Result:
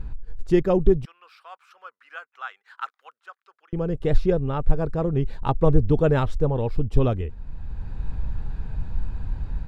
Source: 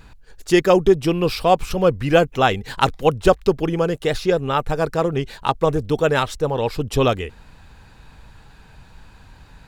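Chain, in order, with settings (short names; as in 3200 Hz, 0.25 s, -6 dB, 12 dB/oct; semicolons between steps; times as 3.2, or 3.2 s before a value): tilt -4 dB/oct; AGC gain up to 4 dB; 1.05–3.73 ladder high-pass 1200 Hz, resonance 60%; gain -3.5 dB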